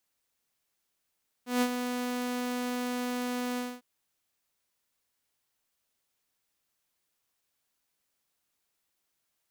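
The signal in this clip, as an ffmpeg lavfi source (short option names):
-f lavfi -i "aevalsrc='0.1*(2*mod(247*t,1)-1)':d=2.352:s=44100,afade=t=in:d=0.155,afade=t=out:st=0.155:d=0.062:silence=0.398,afade=t=out:st=2.12:d=0.232"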